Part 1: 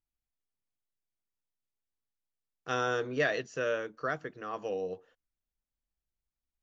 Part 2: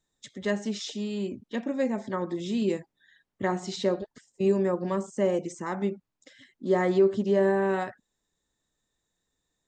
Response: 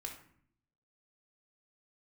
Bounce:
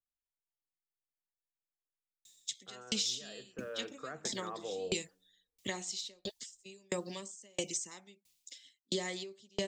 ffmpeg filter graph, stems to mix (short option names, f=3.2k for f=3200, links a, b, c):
-filter_complex "[0:a]lowpass=1.8k,alimiter=level_in=5.5dB:limit=-24dB:level=0:latency=1:release=55,volume=-5.5dB,volume=-4.5dB,afade=t=in:st=3.42:d=0.51:silence=0.354813,asplit=2[a][b];[b]volume=-8.5dB[c];[1:a]alimiter=limit=-18.5dB:level=0:latency=1:release=448,aexciter=amount=8:drive=8.7:freq=2.3k,aeval=exprs='val(0)*pow(10,-40*if(lt(mod(1.5*n/s,1),2*abs(1.5)/1000),1-mod(1.5*n/s,1)/(2*abs(1.5)/1000),(mod(1.5*n/s,1)-2*abs(1.5)/1000)/(1-2*abs(1.5)/1000))/20)':c=same,adelay=2250,volume=0dB[d];[2:a]atrim=start_sample=2205[e];[c][e]afir=irnorm=-1:irlink=0[f];[a][d][f]amix=inputs=3:normalize=0,lowshelf=f=210:g=-3,acrossover=split=160[g][h];[h]acompressor=threshold=-33dB:ratio=4[i];[g][i]amix=inputs=2:normalize=0"